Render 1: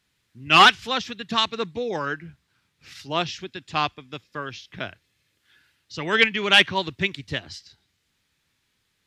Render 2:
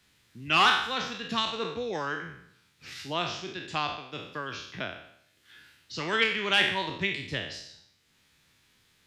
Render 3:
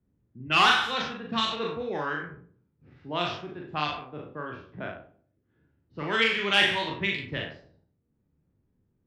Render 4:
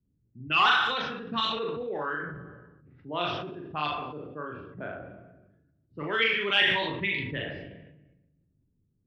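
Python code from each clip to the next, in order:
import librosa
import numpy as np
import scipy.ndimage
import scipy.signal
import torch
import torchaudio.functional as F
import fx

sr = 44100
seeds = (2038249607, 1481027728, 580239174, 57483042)

y1 = fx.spec_trails(x, sr, decay_s=0.61)
y1 = fx.band_squash(y1, sr, depth_pct=40)
y1 = y1 * 10.0 ** (-7.5 / 20.0)
y2 = fx.env_lowpass(y1, sr, base_hz=330.0, full_db=-23.0)
y2 = fx.doubler(y2, sr, ms=40.0, db=-3.0)
y3 = fx.envelope_sharpen(y2, sr, power=1.5)
y3 = fx.room_shoebox(y3, sr, seeds[0], volume_m3=1100.0, walls='mixed', distance_m=0.3)
y3 = fx.sustainer(y3, sr, db_per_s=41.0)
y3 = y3 * 10.0 ** (-2.0 / 20.0)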